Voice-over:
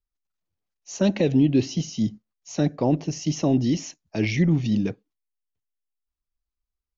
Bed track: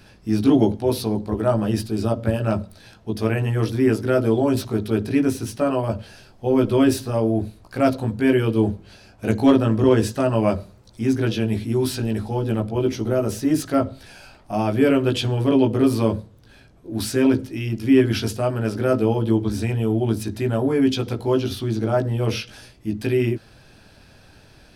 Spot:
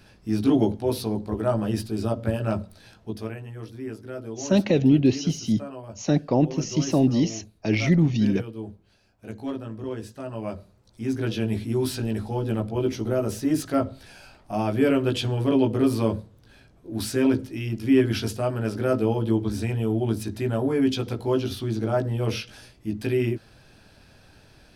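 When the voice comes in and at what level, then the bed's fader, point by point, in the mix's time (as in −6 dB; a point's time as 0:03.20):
3.50 s, +1.0 dB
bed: 0:03.04 −4 dB
0:03.42 −16.5 dB
0:10.06 −16.5 dB
0:11.44 −3.5 dB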